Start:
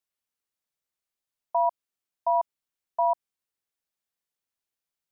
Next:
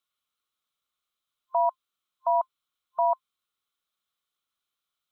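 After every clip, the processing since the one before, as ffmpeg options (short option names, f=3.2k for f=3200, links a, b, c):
-af "superequalizer=10b=3.55:12b=1.58:13b=3.16"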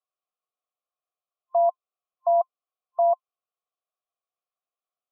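-filter_complex "[0:a]asplit=3[a][b][c];[a]bandpass=f=730:t=q:w=8,volume=0dB[d];[b]bandpass=f=1.09k:t=q:w=8,volume=-6dB[e];[c]bandpass=f=2.44k:t=q:w=8,volume=-9dB[f];[d][e][f]amix=inputs=3:normalize=0,equalizer=f=460:t=o:w=1.4:g=15"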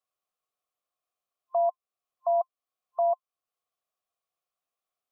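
-af "alimiter=limit=-21.5dB:level=0:latency=1:release=448,volume=2.5dB"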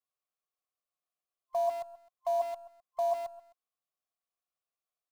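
-filter_complex "[0:a]aecho=1:1:130|260|390:0.376|0.0977|0.0254,asplit=2[a][b];[b]acrusher=bits=6:dc=4:mix=0:aa=0.000001,volume=-10.5dB[c];[a][c]amix=inputs=2:normalize=0,volume=-7.5dB"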